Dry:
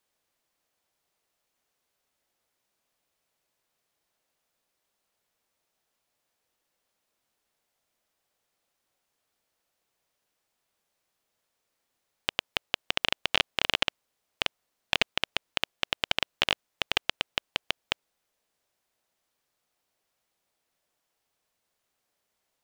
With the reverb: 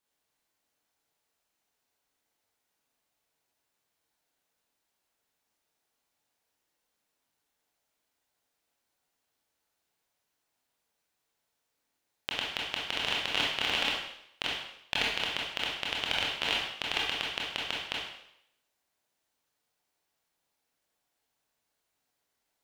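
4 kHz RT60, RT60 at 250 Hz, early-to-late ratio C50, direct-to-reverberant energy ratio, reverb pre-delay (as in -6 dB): 0.75 s, 0.70 s, 1.0 dB, -4.0 dB, 21 ms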